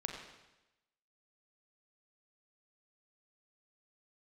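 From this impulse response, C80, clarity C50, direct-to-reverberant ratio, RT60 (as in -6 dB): 4.5 dB, 3.5 dB, 1.0 dB, 1.0 s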